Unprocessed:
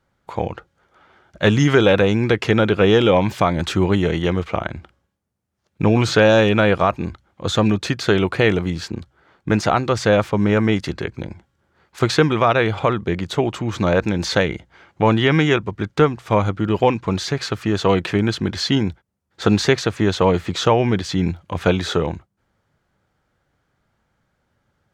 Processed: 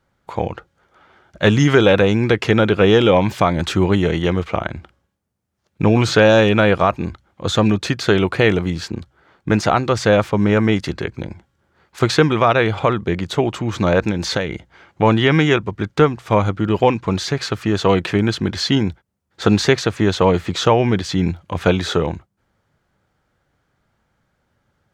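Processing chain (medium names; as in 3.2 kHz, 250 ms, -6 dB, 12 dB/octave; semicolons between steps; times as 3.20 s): 14.10–14.53 s: compression, threshold -18 dBFS, peak gain reduction 6.5 dB; trim +1.5 dB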